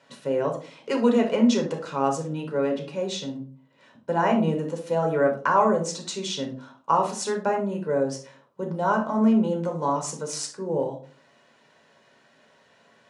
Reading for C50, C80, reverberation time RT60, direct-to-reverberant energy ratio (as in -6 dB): 8.5 dB, 14.5 dB, 0.45 s, 1.5 dB